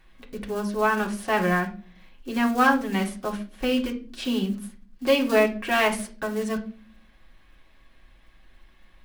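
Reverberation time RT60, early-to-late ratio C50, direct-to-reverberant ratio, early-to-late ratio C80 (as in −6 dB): 0.40 s, 12.5 dB, −1.0 dB, 18.0 dB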